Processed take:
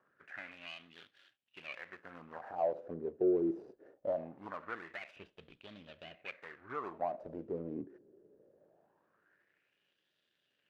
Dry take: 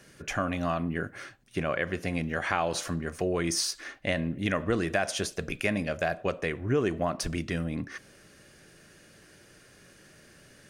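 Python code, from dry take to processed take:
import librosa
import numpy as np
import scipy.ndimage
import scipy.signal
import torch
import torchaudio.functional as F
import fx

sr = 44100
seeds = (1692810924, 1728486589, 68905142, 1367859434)

y = scipy.signal.medfilt(x, 41)
y = fx.filter_lfo_bandpass(y, sr, shape='sine', hz=0.22, low_hz=370.0, high_hz=3400.0, q=4.5)
y = fx.tilt_eq(y, sr, slope=-4.0, at=(5.16, 6.25))
y = y * 10.0 ** (4.0 / 20.0)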